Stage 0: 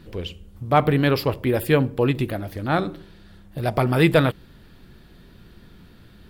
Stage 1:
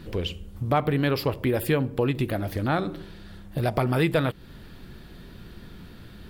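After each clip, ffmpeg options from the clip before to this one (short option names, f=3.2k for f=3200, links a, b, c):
-af "acompressor=threshold=-28dB:ratio=2.5,volume=4dB"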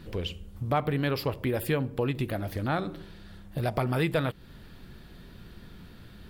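-af "equalizer=f=330:t=o:w=0.77:g=-2,volume=-3.5dB"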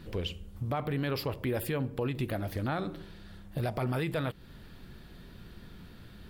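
-af "alimiter=limit=-21.5dB:level=0:latency=1:release=22,volume=-1.5dB"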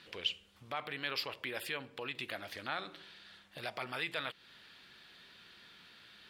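-af "bandpass=f=3.1k:t=q:w=0.91:csg=0,volume=4.5dB"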